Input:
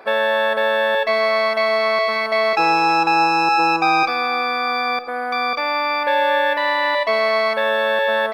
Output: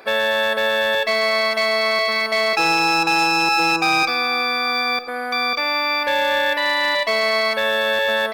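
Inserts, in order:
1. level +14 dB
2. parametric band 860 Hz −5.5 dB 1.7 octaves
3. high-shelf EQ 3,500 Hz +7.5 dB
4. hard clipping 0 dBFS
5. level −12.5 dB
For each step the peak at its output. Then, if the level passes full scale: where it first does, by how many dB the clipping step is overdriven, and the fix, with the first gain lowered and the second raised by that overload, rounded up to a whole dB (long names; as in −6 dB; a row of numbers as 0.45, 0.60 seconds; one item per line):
+7.5, +4.5, +6.0, 0.0, −12.5 dBFS
step 1, 6.0 dB
step 1 +8 dB, step 5 −6.5 dB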